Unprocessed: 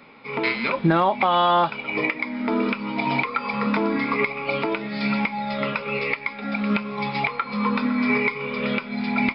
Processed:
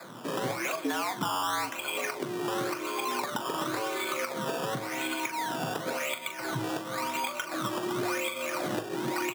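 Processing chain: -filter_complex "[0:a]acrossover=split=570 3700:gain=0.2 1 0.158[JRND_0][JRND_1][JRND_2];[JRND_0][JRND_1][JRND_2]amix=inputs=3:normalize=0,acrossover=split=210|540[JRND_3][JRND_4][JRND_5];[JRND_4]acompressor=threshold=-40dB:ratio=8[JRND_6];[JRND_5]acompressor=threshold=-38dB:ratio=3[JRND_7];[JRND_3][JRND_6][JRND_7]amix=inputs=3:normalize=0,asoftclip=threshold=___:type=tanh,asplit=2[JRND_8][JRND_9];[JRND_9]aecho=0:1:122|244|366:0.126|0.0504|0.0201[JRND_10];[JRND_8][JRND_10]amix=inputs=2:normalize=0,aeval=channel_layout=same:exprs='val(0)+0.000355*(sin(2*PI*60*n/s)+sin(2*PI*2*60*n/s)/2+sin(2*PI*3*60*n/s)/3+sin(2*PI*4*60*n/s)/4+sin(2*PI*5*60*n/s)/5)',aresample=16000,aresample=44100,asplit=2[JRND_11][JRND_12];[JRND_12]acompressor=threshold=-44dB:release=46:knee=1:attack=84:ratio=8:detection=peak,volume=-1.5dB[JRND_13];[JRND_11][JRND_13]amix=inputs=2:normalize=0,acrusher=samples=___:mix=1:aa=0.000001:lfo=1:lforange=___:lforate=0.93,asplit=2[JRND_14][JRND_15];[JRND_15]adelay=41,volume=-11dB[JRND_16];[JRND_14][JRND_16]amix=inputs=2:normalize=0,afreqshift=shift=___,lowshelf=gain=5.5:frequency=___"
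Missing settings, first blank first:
-26dB, 15, 15, 110, 180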